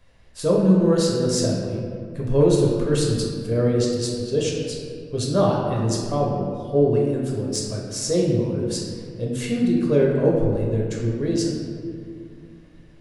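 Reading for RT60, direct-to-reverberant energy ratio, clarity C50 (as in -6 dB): 2.2 s, -3.0 dB, 1.0 dB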